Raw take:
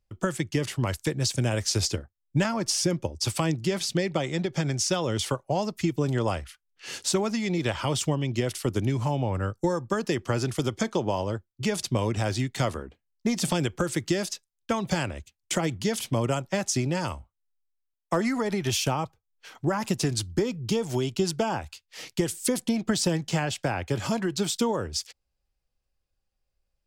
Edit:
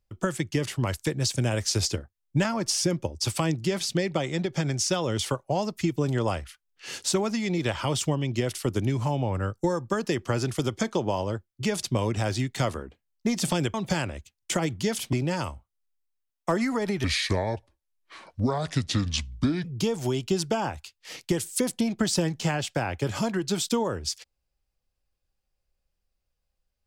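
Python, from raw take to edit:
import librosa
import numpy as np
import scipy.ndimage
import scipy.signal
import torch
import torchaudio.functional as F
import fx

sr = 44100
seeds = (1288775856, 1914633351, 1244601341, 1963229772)

y = fx.edit(x, sr, fx.cut(start_s=13.74, length_s=1.01),
    fx.cut(start_s=16.14, length_s=0.63),
    fx.speed_span(start_s=18.68, length_s=1.85, speed=0.71), tone=tone)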